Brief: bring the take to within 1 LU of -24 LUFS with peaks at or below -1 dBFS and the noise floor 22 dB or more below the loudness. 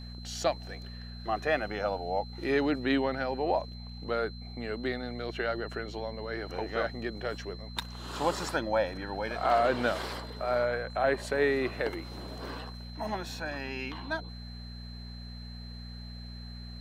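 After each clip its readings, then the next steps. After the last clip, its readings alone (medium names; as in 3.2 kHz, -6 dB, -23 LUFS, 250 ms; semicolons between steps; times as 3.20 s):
hum 60 Hz; highest harmonic 240 Hz; hum level -41 dBFS; steady tone 4.1 kHz; tone level -49 dBFS; loudness -32.5 LUFS; peak level -13.5 dBFS; loudness target -24.0 LUFS
-> de-hum 60 Hz, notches 4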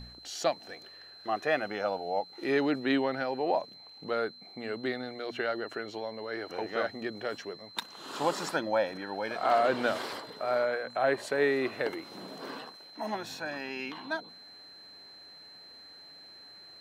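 hum not found; steady tone 4.1 kHz; tone level -49 dBFS
-> band-stop 4.1 kHz, Q 30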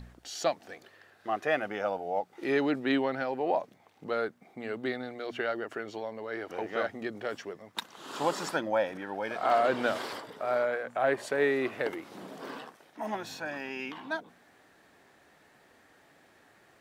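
steady tone not found; loudness -32.5 LUFS; peak level -14.0 dBFS; loudness target -24.0 LUFS
-> trim +8.5 dB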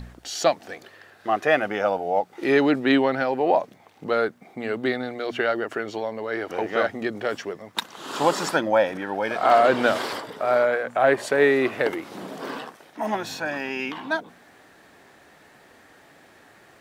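loudness -24.0 LUFS; peak level -5.5 dBFS; noise floor -53 dBFS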